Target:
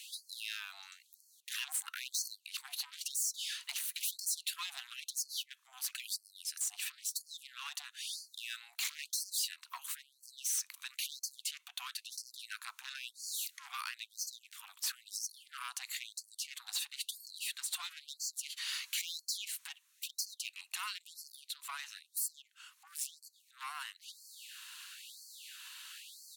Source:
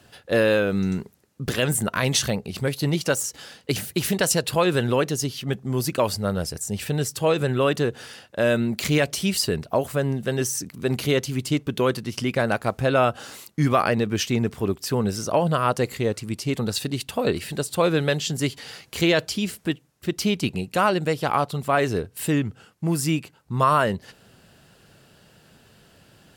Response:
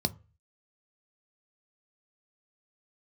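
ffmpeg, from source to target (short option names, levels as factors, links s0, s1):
-filter_complex "[0:a]asuperstop=centerf=760:order=12:qfactor=2.9,asplit=2[s0][s1];[1:a]atrim=start_sample=2205[s2];[s1][s2]afir=irnorm=-1:irlink=0,volume=0.141[s3];[s0][s3]amix=inputs=2:normalize=0,acrossover=split=230|3000[s4][s5][s6];[s5]acompressor=threshold=0.0562:ratio=6[s7];[s4][s7][s6]amix=inputs=3:normalize=0,firequalizer=gain_entry='entry(210,0);entry(360,-19);entry(990,-5)':delay=0.05:min_phase=1,asoftclip=type=tanh:threshold=0.0422,acompressor=threshold=0.00316:ratio=3,tiltshelf=f=1200:g=-8.5,asoftclip=type=hard:threshold=0.0106,afftfilt=real='re*gte(b*sr/1024,650*pow(4300/650,0.5+0.5*sin(2*PI*1*pts/sr)))':imag='im*gte(b*sr/1024,650*pow(4300/650,0.5+0.5*sin(2*PI*1*pts/sr)))':win_size=1024:overlap=0.75,volume=2.66"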